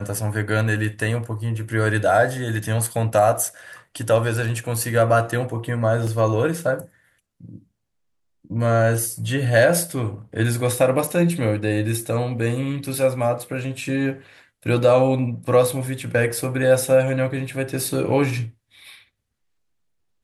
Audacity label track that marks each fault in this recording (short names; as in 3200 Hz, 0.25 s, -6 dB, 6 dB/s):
6.070000	6.070000	gap 2.6 ms